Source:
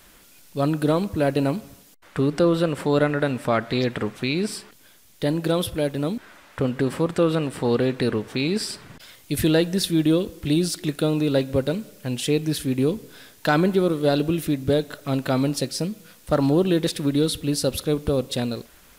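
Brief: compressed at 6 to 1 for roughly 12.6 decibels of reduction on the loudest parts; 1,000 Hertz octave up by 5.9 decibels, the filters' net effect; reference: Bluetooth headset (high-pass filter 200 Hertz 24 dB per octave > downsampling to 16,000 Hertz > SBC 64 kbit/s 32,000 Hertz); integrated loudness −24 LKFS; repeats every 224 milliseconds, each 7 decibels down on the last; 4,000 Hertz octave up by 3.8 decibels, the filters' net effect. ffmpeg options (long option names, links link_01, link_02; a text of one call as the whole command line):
ffmpeg -i in.wav -af "equalizer=frequency=1000:width_type=o:gain=8,equalizer=frequency=4000:width_type=o:gain=4,acompressor=threshold=-27dB:ratio=6,highpass=frequency=200:width=0.5412,highpass=frequency=200:width=1.3066,aecho=1:1:224|448|672|896|1120:0.447|0.201|0.0905|0.0407|0.0183,aresample=16000,aresample=44100,volume=7.5dB" -ar 32000 -c:a sbc -b:a 64k out.sbc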